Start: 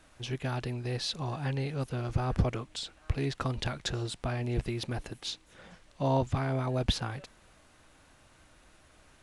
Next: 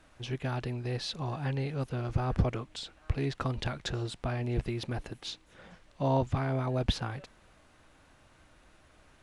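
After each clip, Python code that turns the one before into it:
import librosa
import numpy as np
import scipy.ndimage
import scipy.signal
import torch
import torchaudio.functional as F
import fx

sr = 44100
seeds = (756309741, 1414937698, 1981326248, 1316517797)

y = fx.high_shelf(x, sr, hz=4900.0, db=-7.0)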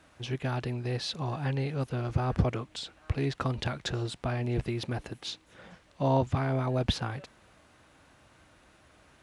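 y = scipy.signal.sosfilt(scipy.signal.butter(2, 62.0, 'highpass', fs=sr, output='sos'), x)
y = F.gain(torch.from_numpy(y), 2.0).numpy()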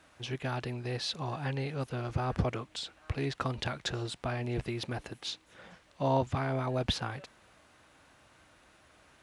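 y = fx.low_shelf(x, sr, hz=410.0, db=-5.0)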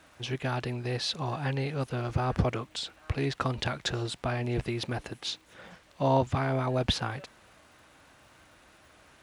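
y = fx.dmg_crackle(x, sr, seeds[0], per_s=270.0, level_db=-59.0)
y = F.gain(torch.from_numpy(y), 3.5).numpy()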